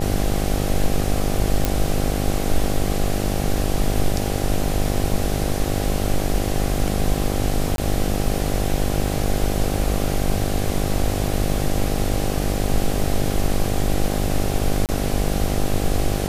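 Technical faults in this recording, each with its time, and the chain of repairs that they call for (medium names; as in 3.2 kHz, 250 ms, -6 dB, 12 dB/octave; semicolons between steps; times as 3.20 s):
buzz 50 Hz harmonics 16 -24 dBFS
1.65 s: pop
7.76–7.78 s: dropout 22 ms
14.86–14.89 s: dropout 28 ms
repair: de-click; de-hum 50 Hz, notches 16; interpolate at 7.76 s, 22 ms; interpolate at 14.86 s, 28 ms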